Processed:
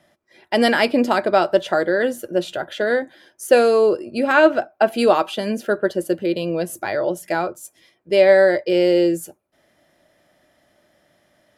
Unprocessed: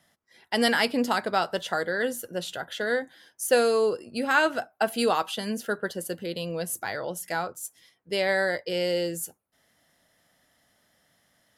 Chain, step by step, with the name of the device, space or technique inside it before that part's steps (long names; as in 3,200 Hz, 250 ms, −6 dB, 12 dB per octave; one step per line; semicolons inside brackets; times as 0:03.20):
inside a helmet (high-shelf EQ 4,600 Hz −8.5 dB; hollow resonant body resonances 350/590/2,400 Hz, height 11 dB, ringing for 45 ms)
0:04.32–0:04.92: parametric band 10,000 Hz −7.5 dB 1 octave
level +5.5 dB